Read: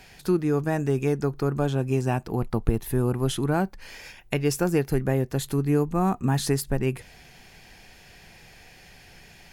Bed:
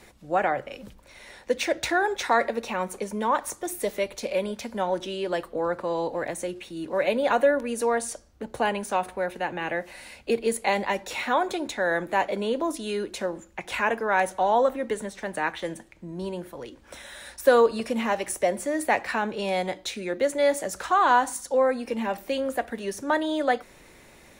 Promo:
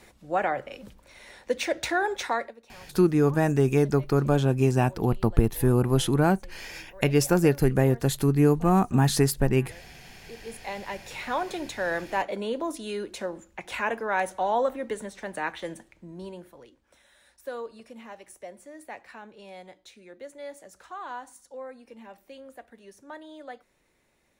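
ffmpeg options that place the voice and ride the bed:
ffmpeg -i stem1.wav -i stem2.wav -filter_complex "[0:a]adelay=2700,volume=2.5dB[link_01];[1:a]volume=16.5dB,afade=type=out:start_time=2.2:duration=0.35:silence=0.1,afade=type=in:start_time=10.28:duration=1.34:silence=0.11885,afade=type=out:start_time=15.81:duration=1.08:silence=0.188365[link_02];[link_01][link_02]amix=inputs=2:normalize=0" out.wav

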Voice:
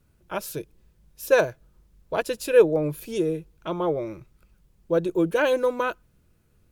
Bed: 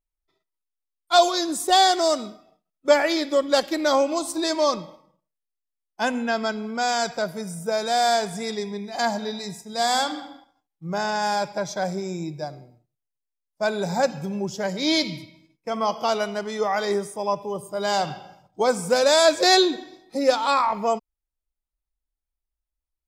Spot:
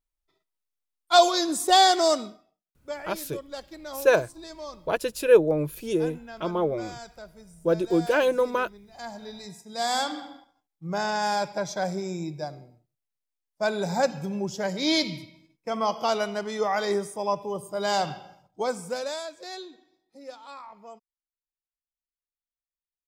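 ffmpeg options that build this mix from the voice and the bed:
ffmpeg -i stem1.wav -i stem2.wav -filter_complex "[0:a]adelay=2750,volume=-0.5dB[link_01];[1:a]volume=15.5dB,afade=type=out:start_time=2.12:duration=0.43:silence=0.133352,afade=type=in:start_time=8.94:duration=1.36:silence=0.158489,afade=type=out:start_time=18.07:duration=1.22:silence=0.0944061[link_02];[link_01][link_02]amix=inputs=2:normalize=0" out.wav

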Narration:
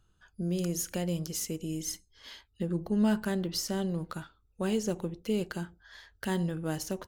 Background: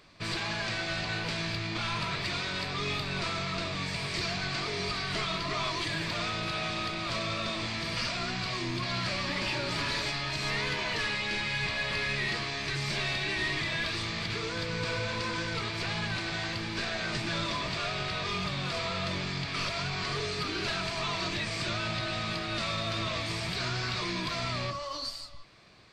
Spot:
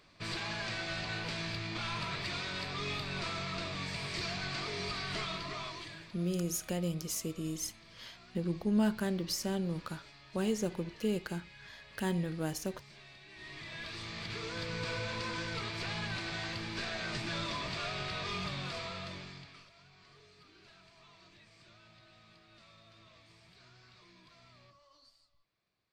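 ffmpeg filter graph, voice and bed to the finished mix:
ffmpeg -i stem1.wav -i stem2.wav -filter_complex "[0:a]adelay=5750,volume=-2.5dB[link_01];[1:a]volume=13.5dB,afade=type=out:start_time=5.16:duration=0.99:silence=0.11885,afade=type=in:start_time=13.29:duration=1.37:silence=0.11885,afade=type=out:start_time=18.47:duration=1.18:silence=0.0749894[link_02];[link_01][link_02]amix=inputs=2:normalize=0" out.wav

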